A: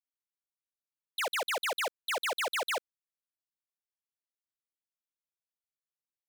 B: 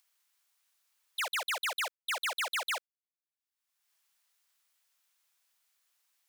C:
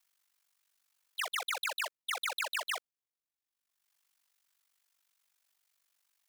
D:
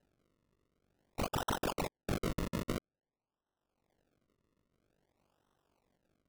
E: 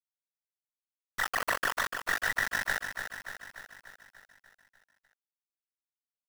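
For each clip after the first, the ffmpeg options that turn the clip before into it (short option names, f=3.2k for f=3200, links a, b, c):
-af "agate=range=-15dB:threshold=-43dB:ratio=16:detection=peak,highpass=940,acompressor=mode=upward:threshold=-48dB:ratio=2.5"
-af "aeval=exprs='val(0)*sin(2*PI*24*n/s)':c=same,volume=1dB"
-af "acrusher=samples=38:mix=1:aa=0.000001:lfo=1:lforange=38:lforate=0.5"
-af "afftfilt=real='real(if(between(b,1,1012),(2*floor((b-1)/92)+1)*92-b,b),0)':imag='imag(if(between(b,1,1012),(2*floor((b-1)/92)+1)*92-b,b),0)*if(between(b,1,1012),-1,1)':win_size=2048:overlap=0.75,aeval=exprs='val(0)*gte(abs(val(0)),0.0141)':c=same,aecho=1:1:294|588|882|1176|1470|1764|2058|2352:0.422|0.249|0.147|0.0866|0.0511|0.0301|0.0178|0.0105,volume=4.5dB"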